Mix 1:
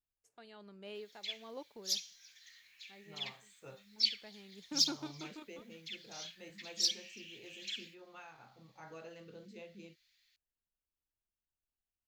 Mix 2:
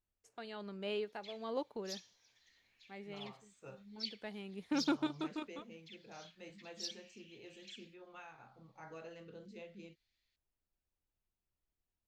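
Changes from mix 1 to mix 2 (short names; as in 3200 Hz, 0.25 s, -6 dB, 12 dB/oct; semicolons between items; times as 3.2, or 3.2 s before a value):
first voice +8.5 dB; background -10.0 dB; master: add high shelf 8100 Hz -9 dB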